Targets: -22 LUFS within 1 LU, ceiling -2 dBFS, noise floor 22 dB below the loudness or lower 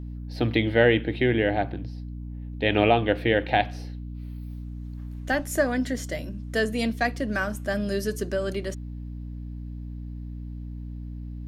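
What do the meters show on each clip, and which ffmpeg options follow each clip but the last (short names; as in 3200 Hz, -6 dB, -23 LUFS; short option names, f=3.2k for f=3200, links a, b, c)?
hum 60 Hz; harmonics up to 300 Hz; hum level -33 dBFS; loudness -25.0 LUFS; peak -6.0 dBFS; loudness target -22.0 LUFS
-> -af "bandreject=f=60:t=h:w=6,bandreject=f=120:t=h:w=6,bandreject=f=180:t=h:w=6,bandreject=f=240:t=h:w=6,bandreject=f=300:t=h:w=6"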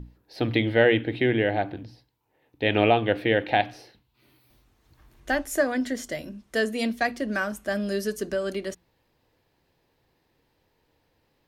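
hum none; loudness -25.5 LUFS; peak -6.5 dBFS; loudness target -22.0 LUFS
-> -af "volume=3.5dB"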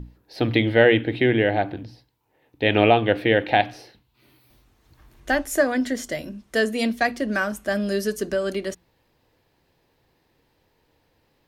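loudness -22.0 LUFS; peak -3.0 dBFS; noise floor -67 dBFS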